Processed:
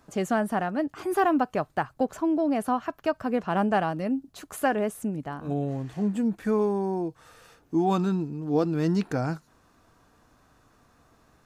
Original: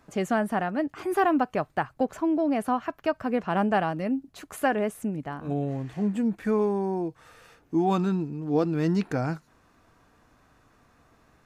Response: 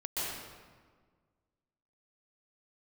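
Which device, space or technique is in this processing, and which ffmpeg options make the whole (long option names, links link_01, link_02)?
exciter from parts: -filter_complex "[0:a]asplit=2[link_01][link_02];[link_02]highpass=frequency=2000:width=0.5412,highpass=frequency=2000:width=1.3066,asoftclip=type=tanh:threshold=-35.5dB,volume=-7.5dB[link_03];[link_01][link_03]amix=inputs=2:normalize=0"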